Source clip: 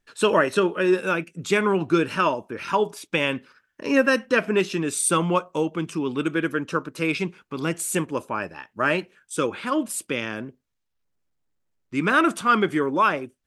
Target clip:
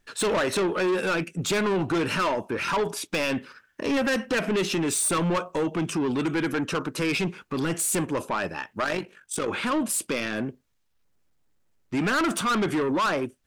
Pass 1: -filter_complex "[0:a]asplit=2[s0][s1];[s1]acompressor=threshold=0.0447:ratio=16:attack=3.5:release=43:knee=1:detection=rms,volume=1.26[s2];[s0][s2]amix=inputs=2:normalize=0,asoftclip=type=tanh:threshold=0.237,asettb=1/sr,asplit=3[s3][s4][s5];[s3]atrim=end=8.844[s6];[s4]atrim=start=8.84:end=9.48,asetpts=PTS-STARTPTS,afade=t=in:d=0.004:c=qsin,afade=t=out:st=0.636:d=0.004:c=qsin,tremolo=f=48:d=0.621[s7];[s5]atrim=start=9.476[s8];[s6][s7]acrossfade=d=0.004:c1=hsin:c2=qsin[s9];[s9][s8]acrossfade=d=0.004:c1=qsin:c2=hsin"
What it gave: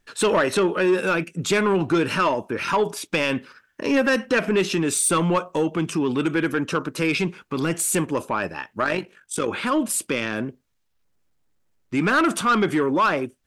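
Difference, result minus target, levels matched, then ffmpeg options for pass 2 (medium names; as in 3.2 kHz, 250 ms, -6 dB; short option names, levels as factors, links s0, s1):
saturation: distortion -8 dB
-filter_complex "[0:a]asplit=2[s0][s1];[s1]acompressor=threshold=0.0447:ratio=16:attack=3.5:release=43:knee=1:detection=rms,volume=1.26[s2];[s0][s2]amix=inputs=2:normalize=0,asoftclip=type=tanh:threshold=0.0891,asettb=1/sr,asplit=3[s3][s4][s5];[s3]atrim=end=8.844[s6];[s4]atrim=start=8.84:end=9.48,asetpts=PTS-STARTPTS,afade=t=in:d=0.004:c=qsin,afade=t=out:st=0.636:d=0.004:c=qsin,tremolo=f=48:d=0.621[s7];[s5]atrim=start=9.476[s8];[s6][s7]acrossfade=d=0.004:c1=hsin:c2=qsin[s9];[s9][s8]acrossfade=d=0.004:c1=qsin:c2=hsin"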